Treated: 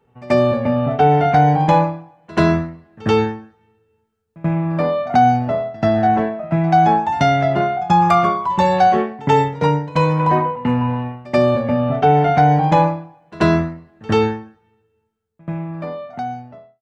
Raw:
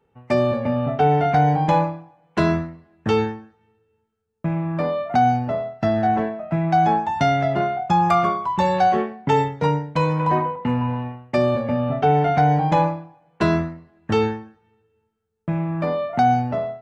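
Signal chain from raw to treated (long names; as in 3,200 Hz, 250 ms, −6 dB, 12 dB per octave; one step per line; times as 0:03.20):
fade-out on the ending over 2.67 s
echo ahead of the sound 85 ms −21.5 dB
level +4 dB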